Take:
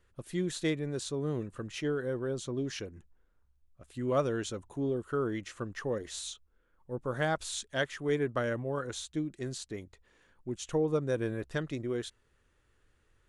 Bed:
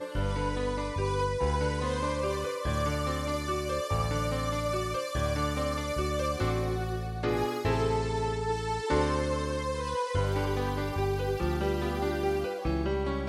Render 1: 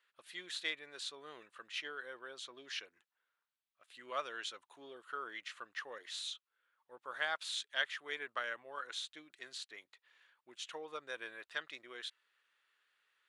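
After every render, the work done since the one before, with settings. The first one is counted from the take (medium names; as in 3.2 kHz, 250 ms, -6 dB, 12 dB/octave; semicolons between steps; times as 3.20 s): high-pass 1.3 kHz 12 dB/octave; resonant high shelf 5 kHz -7.5 dB, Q 1.5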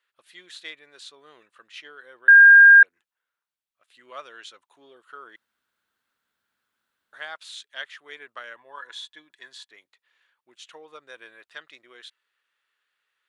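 2.28–2.83 s: bleep 1.61 kHz -6.5 dBFS; 5.36–7.13 s: room tone; 8.56–9.70 s: small resonant body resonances 970/1700/3400 Hz, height 14 dB, ringing for 35 ms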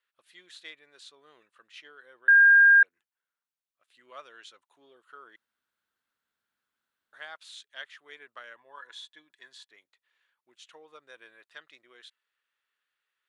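trim -6.5 dB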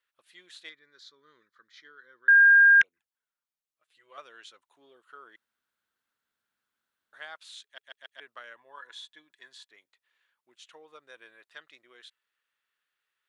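0.69–2.29 s: static phaser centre 2.7 kHz, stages 6; 2.81–4.18 s: touch-sensitive flanger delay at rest 6.5 ms, full sweep at -23.5 dBFS; 7.64 s: stutter in place 0.14 s, 4 plays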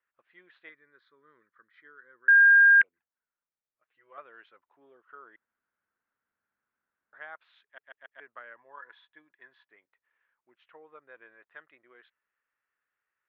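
low-pass 2.1 kHz 24 dB/octave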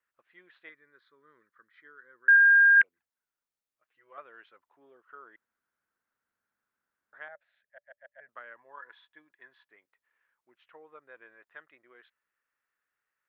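2.36–2.77 s: band-pass 570–2000 Hz; 7.28–8.29 s: FFT filter 220 Hz 0 dB, 330 Hz -28 dB, 580 Hz +7 dB, 1.1 kHz -19 dB, 1.7 kHz -2 dB, 3.2 kHz -17 dB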